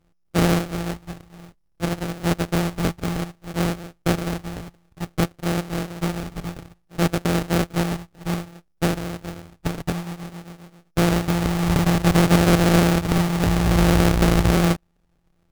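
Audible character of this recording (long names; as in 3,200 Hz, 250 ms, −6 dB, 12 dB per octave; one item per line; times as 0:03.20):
a buzz of ramps at a fixed pitch in blocks of 256 samples
phaser sweep stages 2, 0.58 Hz, lowest notch 590–3,400 Hz
aliases and images of a low sample rate 1,000 Hz, jitter 20%
SBC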